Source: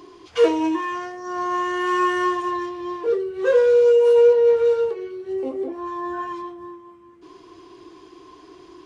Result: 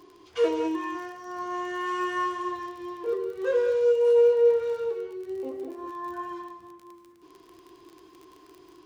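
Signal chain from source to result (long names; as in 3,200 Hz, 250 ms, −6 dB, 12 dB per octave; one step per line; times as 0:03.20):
surface crackle 36 per second −31 dBFS
reverb whose tail is shaped and stops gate 230 ms rising, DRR 8 dB
level −8 dB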